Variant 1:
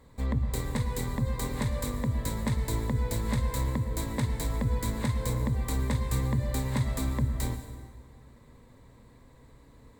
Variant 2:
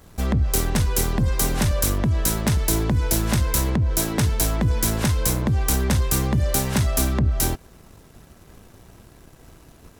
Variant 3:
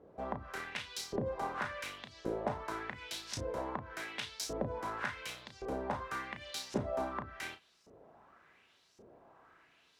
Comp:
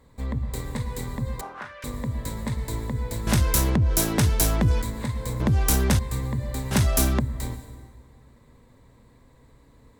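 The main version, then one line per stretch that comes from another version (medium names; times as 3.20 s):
1
1.41–1.84 s: from 3
3.27–4.82 s: from 2
5.40–5.99 s: from 2
6.71–7.20 s: from 2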